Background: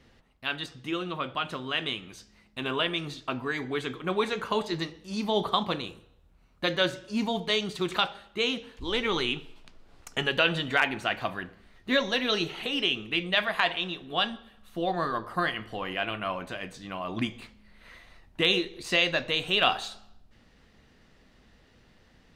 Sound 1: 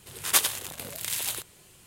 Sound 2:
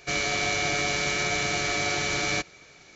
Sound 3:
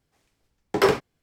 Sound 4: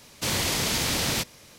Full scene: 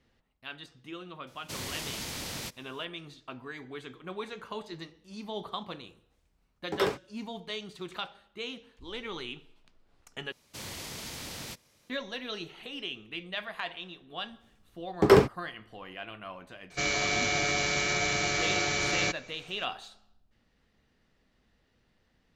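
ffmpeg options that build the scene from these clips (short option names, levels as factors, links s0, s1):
-filter_complex "[4:a]asplit=2[s0][s1];[3:a]asplit=2[s2][s3];[0:a]volume=0.282[s4];[s3]lowshelf=f=390:g=11.5[s5];[s4]asplit=2[s6][s7];[s6]atrim=end=10.324[s8];[s1]atrim=end=1.58,asetpts=PTS-STARTPTS,volume=0.178[s9];[s7]atrim=start=11.896[s10];[s0]atrim=end=1.58,asetpts=PTS-STARTPTS,volume=0.251,afade=t=in:d=0.004:c=hsin,afade=t=out:st=1.576:d=0.004:c=hsin,adelay=1270[s11];[s2]atrim=end=1.22,asetpts=PTS-STARTPTS,volume=0.335,afade=t=in:d=0.004:c=hsin,afade=t=out:st=1.216:d=0.004:c=hsin,adelay=5980[s12];[s5]atrim=end=1.22,asetpts=PTS-STARTPTS,volume=0.631,afade=t=in:d=0.004:c=hsin,afade=t=out:st=1.216:d=0.004:c=hsin,adelay=629748S[s13];[2:a]atrim=end=2.95,asetpts=PTS-STARTPTS,volume=0.794,afade=t=in:d=0.004:c=hsin,afade=t=out:st=2.946:d=0.004:c=hsin,adelay=16700[s14];[s8][s9]acrossfade=d=0.004:c1=hsin:c2=hsin[s15];[s15][s10]acrossfade=d=0.004:c1=hsin:c2=hsin[s16];[s16][s11][s12][s13][s14]amix=inputs=5:normalize=0"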